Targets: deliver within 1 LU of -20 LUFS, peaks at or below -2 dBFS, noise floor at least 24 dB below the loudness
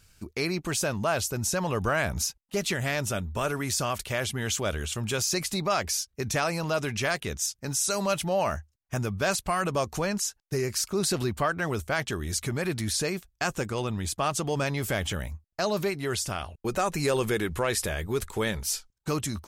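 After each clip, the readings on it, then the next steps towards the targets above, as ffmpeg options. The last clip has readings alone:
loudness -28.5 LUFS; peak -13.5 dBFS; loudness target -20.0 LUFS
-> -af "volume=8.5dB"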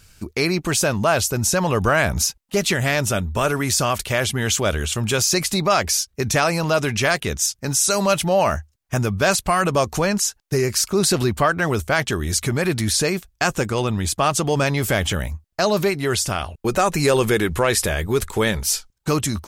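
loudness -20.0 LUFS; peak -5.0 dBFS; noise floor -64 dBFS

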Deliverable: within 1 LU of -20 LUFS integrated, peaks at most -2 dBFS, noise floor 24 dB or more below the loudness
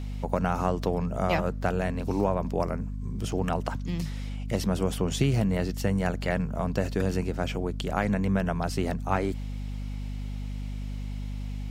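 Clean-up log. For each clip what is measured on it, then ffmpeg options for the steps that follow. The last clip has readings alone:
hum 50 Hz; harmonics up to 250 Hz; hum level -31 dBFS; loudness -29.5 LUFS; peak -9.0 dBFS; loudness target -20.0 LUFS
-> -af "bandreject=f=50:t=h:w=4,bandreject=f=100:t=h:w=4,bandreject=f=150:t=h:w=4,bandreject=f=200:t=h:w=4,bandreject=f=250:t=h:w=4"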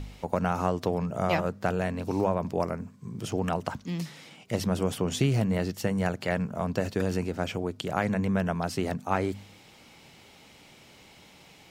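hum none; loudness -29.5 LUFS; peak -9.5 dBFS; loudness target -20.0 LUFS
-> -af "volume=9.5dB,alimiter=limit=-2dB:level=0:latency=1"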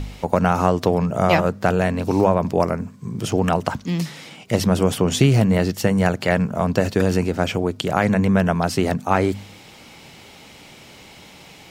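loudness -20.0 LUFS; peak -2.0 dBFS; noise floor -45 dBFS

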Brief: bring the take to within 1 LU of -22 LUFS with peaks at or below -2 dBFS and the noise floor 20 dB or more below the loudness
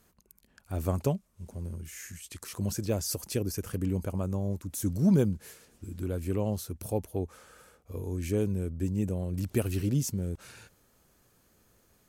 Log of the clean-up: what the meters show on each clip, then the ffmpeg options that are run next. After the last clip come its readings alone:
loudness -32.0 LUFS; peak -14.0 dBFS; loudness target -22.0 LUFS
-> -af "volume=10dB"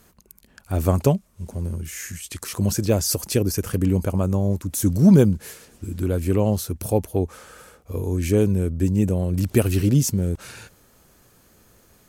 loudness -22.0 LUFS; peak -4.0 dBFS; noise floor -57 dBFS

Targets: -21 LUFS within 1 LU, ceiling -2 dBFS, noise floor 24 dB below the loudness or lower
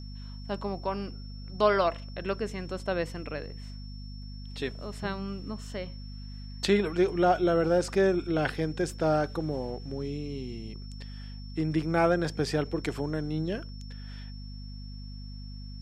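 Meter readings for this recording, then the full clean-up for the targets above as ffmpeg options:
hum 50 Hz; harmonics up to 250 Hz; hum level -39 dBFS; steady tone 5400 Hz; tone level -51 dBFS; loudness -29.5 LUFS; peak -9.5 dBFS; loudness target -21.0 LUFS
-> -af "bandreject=f=50:t=h:w=4,bandreject=f=100:t=h:w=4,bandreject=f=150:t=h:w=4,bandreject=f=200:t=h:w=4,bandreject=f=250:t=h:w=4"
-af "bandreject=f=5.4k:w=30"
-af "volume=8.5dB,alimiter=limit=-2dB:level=0:latency=1"

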